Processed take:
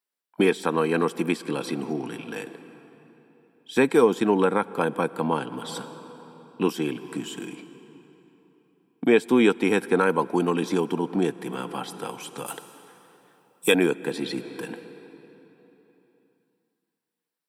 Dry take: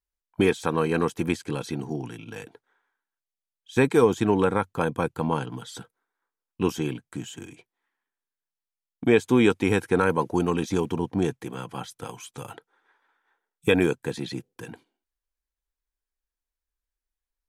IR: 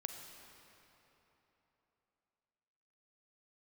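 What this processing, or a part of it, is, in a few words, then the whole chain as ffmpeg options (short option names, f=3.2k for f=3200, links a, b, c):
ducked reverb: -filter_complex "[0:a]highpass=f=180:w=0.5412,highpass=f=180:w=1.3066,bandreject=f=6.5k:w=5.2,asplit=3[a][b][c];[1:a]atrim=start_sample=2205[d];[b][d]afir=irnorm=-1:irlink=0[e];[c]apad=whole_len=770900[f];[e][f]sidechaincompress=threshold=-30dB:ratio=12:attack=6:release=390,volume=0.5dB[g];[a][g]amix=inputs=2:normalize=0,asettb=1/sr,asplit=3[h][i][j];[h]atrim=end=12.464[k];[i]atrim=start=12.46:end=13.75,asetpts=PTS-STARTPTS,afade=t=in:d=0.004:c=qsin,afade=t=out:st=1.286:d=0.004:c=qsin,bass=f=250:g=-4,treble=f=4k:g=13[l];[j]atrim=start=13.746[m];[k][l]acrossfade=d=0.004:c1=hsin:c2=qsin[n];[n][m]acrossfade=d=0.004:c1=qsin:c2=hsin"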